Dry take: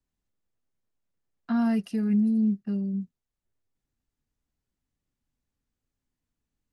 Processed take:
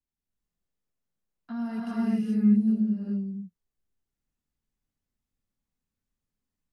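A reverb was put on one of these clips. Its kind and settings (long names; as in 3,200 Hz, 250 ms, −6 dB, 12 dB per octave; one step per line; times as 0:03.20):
reverb whose tail is shaped and stops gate 450 ms rising, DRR −6.5 dB
level −10 dB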